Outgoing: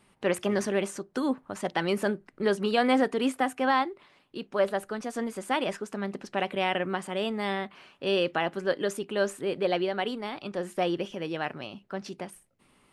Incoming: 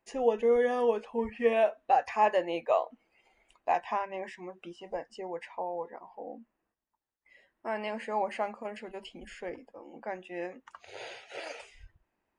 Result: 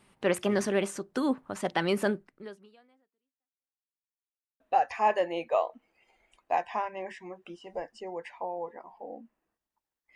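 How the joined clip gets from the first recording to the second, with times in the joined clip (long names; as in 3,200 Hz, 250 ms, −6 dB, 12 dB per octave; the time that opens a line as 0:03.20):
outgoing
0:02.17–0:03.89: fade out exponential
0:03.89–0:04.60: silence
0:04.60: continue with incoming from 0:01.77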